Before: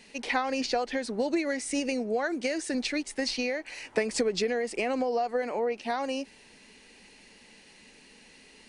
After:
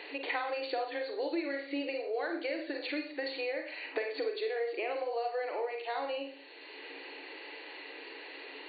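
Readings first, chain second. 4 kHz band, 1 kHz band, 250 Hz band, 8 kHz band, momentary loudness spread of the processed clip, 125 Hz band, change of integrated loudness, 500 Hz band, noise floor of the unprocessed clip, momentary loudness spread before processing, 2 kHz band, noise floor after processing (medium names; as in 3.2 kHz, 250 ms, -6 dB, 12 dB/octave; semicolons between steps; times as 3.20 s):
-6.5 dB, -5.0 dB, -9.0 dB, under -40 dB, 11 LU, under -30 dB, -6.5 dB, -4.5 dB, -55 dBFS, 4 LU, -4.0 dB, -48 dBFS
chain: FFT band-pass 270–4600 Hz; Schroeder reverb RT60 0.42 s, combs from 32 ms, DRR 3 dB; three bands compressed up and down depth 70%; trim -7 dB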